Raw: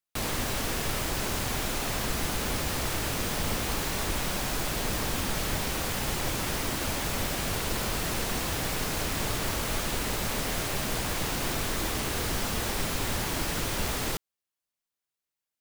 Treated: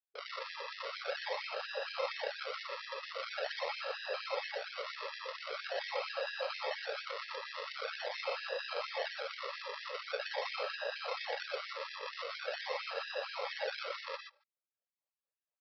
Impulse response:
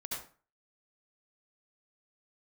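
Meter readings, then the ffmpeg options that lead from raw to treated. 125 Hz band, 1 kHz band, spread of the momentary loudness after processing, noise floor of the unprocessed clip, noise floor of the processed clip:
below −40 dB, −7.5 dB, 4 LU, below −85 dBFS, below −85 dBFS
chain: -filter_complex "[0:a]asplit=3[link_01][link_02][link_03];[link_01]bandpass=frequency=530:width_type=q:width=8,volume=0dB[link_04];[link_02]bandpass=frequency=1840:width_type=q:width=8,volume=-6dB[link_05];[link_03]bandpass=frequency=2480:width_type=q:width=8,volume=-9dB[link_06];[link_04][link_05][link_06]amix=inputs=3:normalize=0,acrossover=split=180[link_07][link_08];[link_07]adelay=140[link_09];[link_09][link_08]amix=inputs=2:normalize=0,aresample=11025,acrusher=samples=10:mix=1:aa=0.000001:lfo=1:lforange=10:lforate=0.44,aresample=44100[link_10];[1:a]atrim=start_sample=2205,atrim=end_sample=3087,asetrate=24696,aresample=44100[link_11];[link_10][link_11]afir=irnorm=-1:irlink=0,afftfilt=real='re*gte(b*sr/1024,390*pow(1600/390,0.5+0.5*sin(2*PI*4.3*pts/sr)))':imag='im*gte(b*sr/1024,390*pow(1600/390,0.5+0.5*sin(2*PI*4.3*pts/sr)))':win_size=1024:overlap=0.75,volume=11dB"

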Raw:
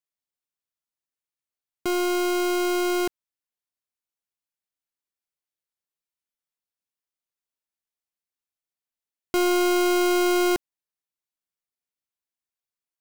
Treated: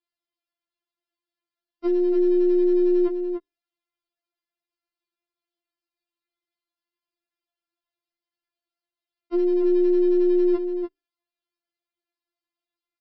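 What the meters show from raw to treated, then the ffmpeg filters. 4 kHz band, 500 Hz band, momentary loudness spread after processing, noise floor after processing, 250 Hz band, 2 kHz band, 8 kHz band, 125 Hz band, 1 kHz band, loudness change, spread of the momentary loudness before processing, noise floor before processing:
below −20 dB, +4.0 dB, 11 LU, below −85 dBFS, +4.0 dB, below −20 dB, below −40 dB, can't be measured, below −15 dB, +1.5 dB, 8 LU, below −85 dBFS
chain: -filter_complex "[0:a]highpass=frequency=88:poles=1,lowshelf=frequency=360:gain=10.5,bandreject=frequency=60:width_type=h:width=6,bandreject=frequency=120:width_type=h:width=6,bandreject=frequency=180:width_type=h:width=6,bandreject=frequency=240:width_type=h:width=6,bandreject=frequency=300:width_type=h:width=6,aresample=11025,asoftclip=type=tanh:threshold=-30dB,aresample=44100,asplit=2[link_01][link_02];[link_02]adelay=291.5,volume=-6dB,highshelf=frequency=4000:gain=-6.56[link_03];[link_01][link_03]amix=inputs=2:normalize=0,afftfilt=real='re*4*eq(mod(b,16),0)':imag='im*4*eq(mod(b,16),0)':win_size=2048:overlap=0.75,volume=5.5dB"

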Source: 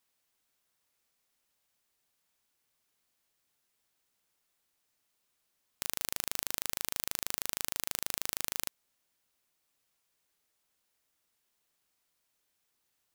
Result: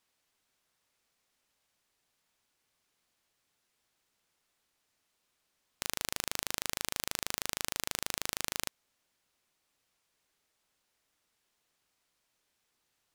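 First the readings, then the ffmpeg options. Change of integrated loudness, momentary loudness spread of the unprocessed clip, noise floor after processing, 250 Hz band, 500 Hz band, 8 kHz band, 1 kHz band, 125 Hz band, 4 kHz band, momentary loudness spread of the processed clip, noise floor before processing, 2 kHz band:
−1.0 dB, 3 LU, −80 dBFS, +3.5 dB, +3.5 dB, 0.0 dB, +3.5 dB, +3.5 dB, +2.5 dB, 3 LU, −79 dBFS, +3.0 dB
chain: -af "highshelf=frequency=11000:gain=-11.5,volume=3.5dB"

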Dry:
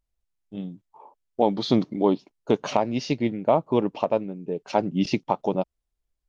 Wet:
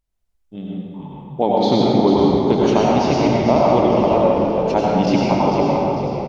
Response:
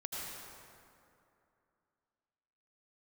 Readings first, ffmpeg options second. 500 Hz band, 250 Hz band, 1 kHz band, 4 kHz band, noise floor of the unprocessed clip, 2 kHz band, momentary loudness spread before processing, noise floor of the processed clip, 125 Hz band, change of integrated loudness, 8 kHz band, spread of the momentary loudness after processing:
+9.0 dB, +9.0 dB, +9.5 dB, +7.5 dB, −81 dBFS, +8.0 dB, 15 LU, −66 dBFS, +10.5 dB, +9.0 dB, can't be measured, 15 LU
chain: -filter_complex "[0:a]asplit=6[link_01][link_02][link_03][link_04][link_05][link_06];[link_02]adelay=447,afreqshift=-41,volume=-7dB[link_07];[link_03]adelay=894,afreqshift=-82,volume=-14.3dB[link_08];[link_04]adelay=1341,afreqshift=-123,volume=-21.7dB[link_09];[link_05]adelay=1788,afreqshift=-164,volume=-29dB[link_10];[link_06]adelay=2235,afreqshift=-205,volume=-36.3dB[link_11];[link_01][link_07][link_08][link_09][link_10][link_11]amix=inputs=6:normalize=0[link_12];[1:a]atrim=start_sample=2205[link_13];[link_12][link_13]afir=irnorm=-1:irlink=0,volume=6.5dB"

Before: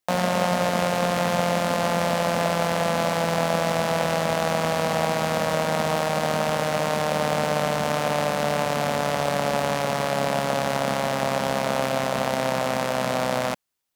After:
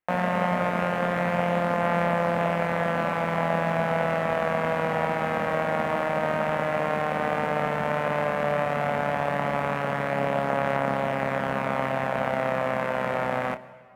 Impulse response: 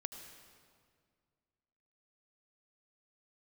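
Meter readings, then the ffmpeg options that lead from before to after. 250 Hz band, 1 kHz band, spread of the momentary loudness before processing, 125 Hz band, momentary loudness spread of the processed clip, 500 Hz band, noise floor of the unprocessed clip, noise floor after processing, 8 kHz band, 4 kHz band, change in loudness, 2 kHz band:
−2.0 dB, −1.5 dB, 2 LU, −2.0 dB, 2 LU, −2.0 dB, −27 dBFS, −29 dBFS, below −15 dB, −11.5 dB, −2.0 dB, −0.5 dB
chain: -filter_complex "[0:a]highshelf=frequency=3100:width_type=q:width=1.5:gain=-14,asplit=2[link_01][link_02];[1:a]atrim=start_sample=2205,adelay=29[link_03];[link_02][link_03]afir=irnorm=-1:irlink=0,volume=-8dB[link_04];[link_01][link_04]amix=inputs=2:normalize=0,volume=-3dB"

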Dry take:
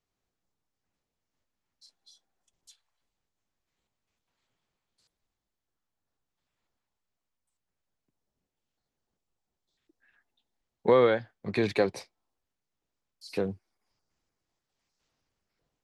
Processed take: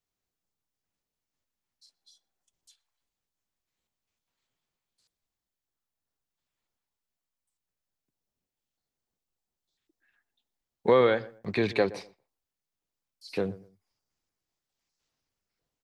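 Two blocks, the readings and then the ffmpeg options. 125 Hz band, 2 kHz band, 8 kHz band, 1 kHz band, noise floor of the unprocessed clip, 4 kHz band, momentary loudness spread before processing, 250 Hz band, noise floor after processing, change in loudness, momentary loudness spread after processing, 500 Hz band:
0.0 dB, +1.5 dB, can't be measured, +0.5 dB, below −85 dBFS, +1.5 dB, 13 LU, 0.0 dB, below −85 dBFS, +0.5 dB, 15 LU, 0.0 dB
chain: -filter_complex "[0:a]highshelf=frequency=6800:gain=-11,agate=range=-6dB:threshold=-53dB:ratio=16:detection=peak,aemphasis=mode=production:type=75kf,acrossover=split=4500[link_01][link_02];[link_02]acompressor=threshold=-55dB:ratio=4:attack=1:release=60[link_03];[link_01][link_03]amix=inputs=2:normalize=0,asplit=2[link_04][link_05];[link_05]adelay=120,lowpass=frequency=1300:poles=1,volume=-18dB,asplit=2[link_06][link_07];[link_07]adelay=120,lowpass=frequency=1300:poles=1,volume=0.26[link_08];[link_06][link_08]amix=inputs=2:normalize=0[link_09];[link_04][link_09]amix=inputs=2:normalize=0"

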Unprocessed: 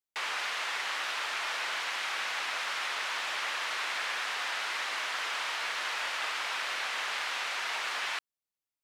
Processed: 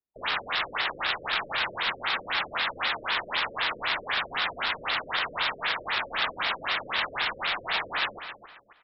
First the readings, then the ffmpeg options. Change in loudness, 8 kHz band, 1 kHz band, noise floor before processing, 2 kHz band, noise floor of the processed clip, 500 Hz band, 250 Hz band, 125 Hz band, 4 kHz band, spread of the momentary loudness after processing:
+4.0 dB, below −25 dB, +4.5 dB, below −85 dBFS, +3.5 dB, −53 dBFS, +7.0 dB, +12.0 dB, can't be measured, +4.5 dB, 3 LU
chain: -filter_complex "[0:a]equalizer=frequency=3700:width=2.8:gain=9.5,adynamicsmooth=sensitivity=6.5:basefreq=770,asplit=2[link_01][link_02];[link_02]adelay=270,lowpass=frequency=4100:poles=1,volume=-10.5dB,asplit=2[link_03][link_04];[link_04]adelay=270,lowpass=frequency=4100:poles=1,volume=0.31,asplit=2[link_05][link_06];[link_06]adelay=270,lowpass=frequency=4100:poles=1,volume=0.31[link_07];[link_03][link_05][link_07]amix=inputs=3:normalize=0[link_08];[link_01][link_08]amix=inputs=2:normalize=0,afftfilt=real='re*lt(b*sr/1024,580*pow(5700/580,0.5+0.5*sin(2*PI*3.9*pts/sr)))':imag='im*lt(b*sr/1024,580*pow(5700/580,0.5+0.5*sin(2*PI*3.9*pts/sr)))':win_size=1024:overlap=0.75,volume=6dB"

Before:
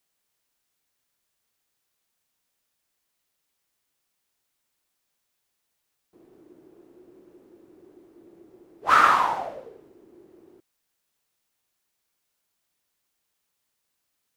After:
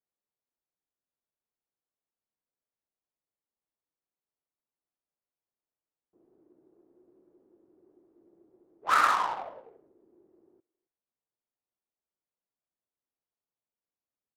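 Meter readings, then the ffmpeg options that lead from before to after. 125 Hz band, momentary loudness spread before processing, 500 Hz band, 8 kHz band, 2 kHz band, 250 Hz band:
can't be measured, 17 LU, −8.0 dB, −2.0 dB, −6.0 dB, −10.0 dB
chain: -filter_complex "[0:a]lowshelf=frequency=300:gain=-9.5,adynamicsmooth=sensitivity=3:basefreq=780,asplit=2[link_01][link_02];[link_02]adelay=270,highpass=300,lowpass=3400,asoftclip=type=hard:threshold=-14.5dB,volume=-24dB[link_03];[link_01][link_03]amix=inputs=2:normalize=0,volume=-5.5dB"

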